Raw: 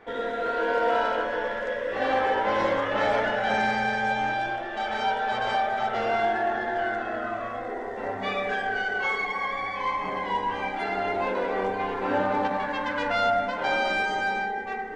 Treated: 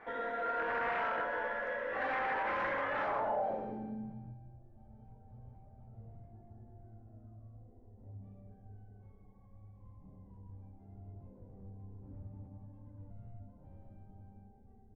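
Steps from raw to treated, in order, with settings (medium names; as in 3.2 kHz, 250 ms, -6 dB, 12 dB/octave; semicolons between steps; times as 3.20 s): fifteen-band graphic EQ 400 Hz -5 dB, 1.6 kHz -7 dB, 6.3 kHz +10 dB; wavefolder -24 dBFS; on a send: feedback delay 729 ms, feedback 58%, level -18 dB; on the sum: low-pass sweep 1.7 kHz -> 100 Hz, 2.96–4.40 s; bass shelf 320 Hz -6 dB; in parallel at +2 dB: compression, threshold -42 dBFS, peak gain reduction 16.5 dB; on the sum: trim -8.5 dB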